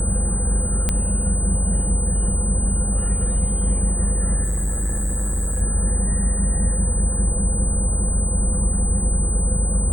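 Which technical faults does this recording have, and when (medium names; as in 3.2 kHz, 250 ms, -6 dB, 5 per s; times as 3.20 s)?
whine 8.1 kHz -25 dBFS
0.89 s: pop -6 dBFS
4.43–5.62 s: clipped -19 dBFS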